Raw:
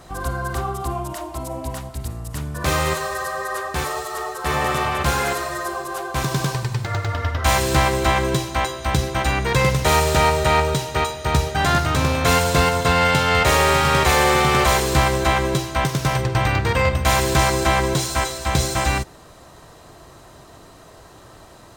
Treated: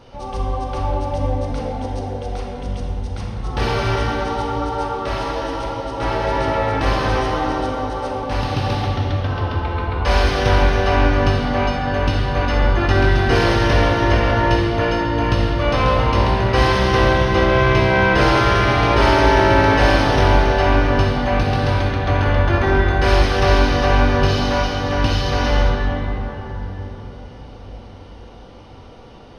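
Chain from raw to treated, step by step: simulated room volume 200 m³, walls hard, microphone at 0.67 m; speed mistake 45 rpm record played at 33 rpm; Savitzky-Golay filter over 15 samples; trim -2 dB

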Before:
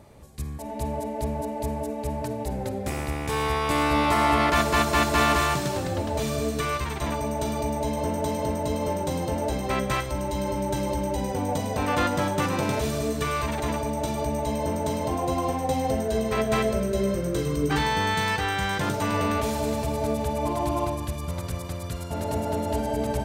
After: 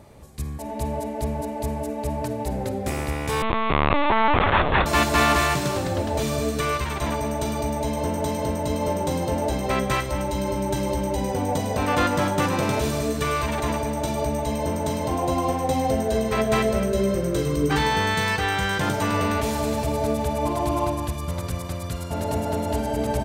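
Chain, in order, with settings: speakerphone echo 220 ms, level -11 dB; 3.42–4.86 s: LPC vocoder at 8 kHz pitch kept; trim +2.5 dB

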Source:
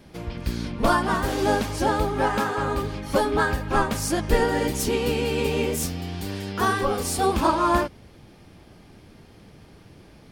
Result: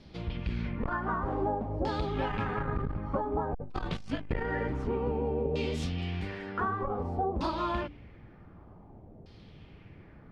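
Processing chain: 2.29–2.99 s: octave divider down 1 oct, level +1 dB; LFO low-pass saw down 0.54 Hz 590–4700 Hz; 3.52–4.30 s: frequency shift -54 Hz; 5.98–6.60 s: treble shelf 4.1 kHz +8 dB; compression 6:1, threshold -21 dBFS, peak gain reduction 9 dB; bass shelf 230 Hz +8 dB; band-stop 1.6 kHz, Q 25; de-hum 48.75 Hz, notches 7; transformer saturation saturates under 170 Hz; trim -7.5 dB

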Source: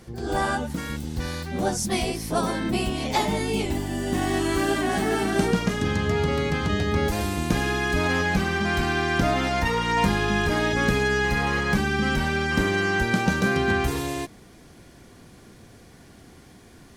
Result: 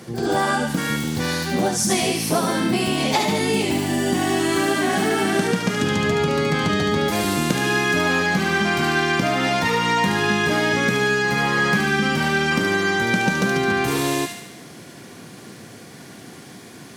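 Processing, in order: high-pass 120 Hz 24 dB/octave; compression, threshold -26 dBFS, peak gain reduction 9.5 dB; feedback echo behind a high-pass 73 ms, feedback 59%, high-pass 1.6 kHz, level -3.5 dB; trim +9 dB

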